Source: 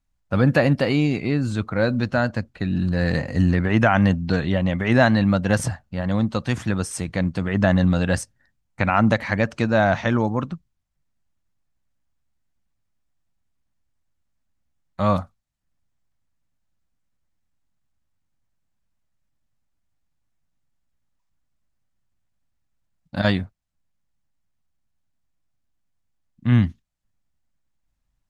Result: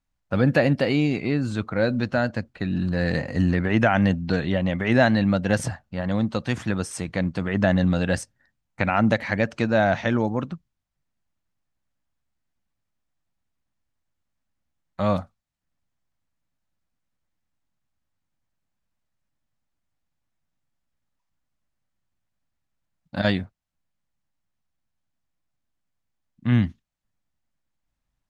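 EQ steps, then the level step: dynamic EQ 1100 Hz, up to -6 dB, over -36 dBFS, Q 2.1; low shelf 130 Hz -6.5 dB; high shelf 7100 Hz -6.5 dB; 0.0 dB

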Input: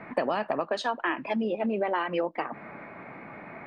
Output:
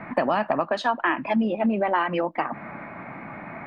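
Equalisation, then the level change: bell 440 Hz -9 dB 0.67 oct; high shelf 3100 Hz -10.5 dB; +8.0 dB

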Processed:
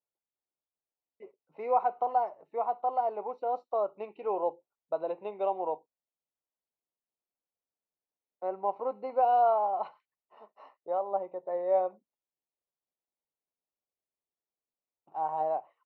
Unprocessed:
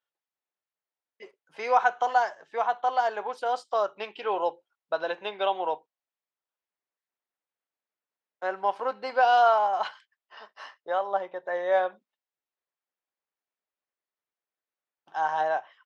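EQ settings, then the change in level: running mean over 27 samples; air absorption 130 m; 0.0 dB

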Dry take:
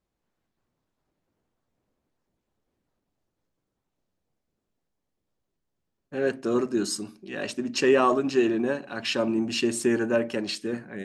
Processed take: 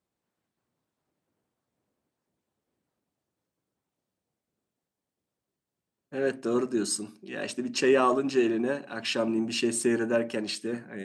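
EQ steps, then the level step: HPF 99 Hz 12 dB/oct; bell 8500 Hz +6.5 dB 0.2 oct; -2.0 dB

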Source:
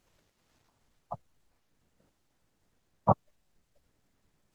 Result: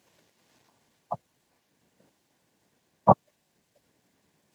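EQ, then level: HPF 150 Hz 12 dB/oct; notch 1300 Hz, Q 7.2; +7.0 dB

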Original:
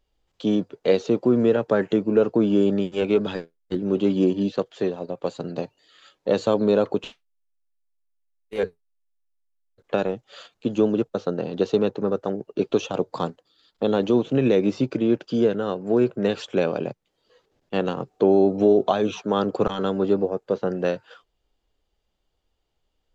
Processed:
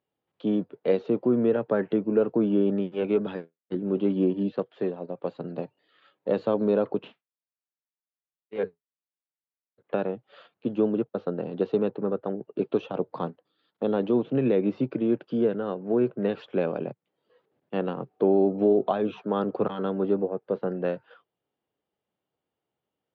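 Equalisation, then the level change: HPF 120 Hz 24 dB/oct; air absorption 400 m; -3.0 dB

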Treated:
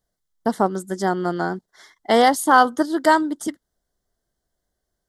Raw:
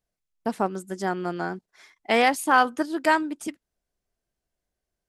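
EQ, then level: Butterworth band-stop 2500 Hz, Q 2.5; dynamic EQ 1800 Hz, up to -5 dB, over -37 dBFS, Q 2.2; +6.0 dB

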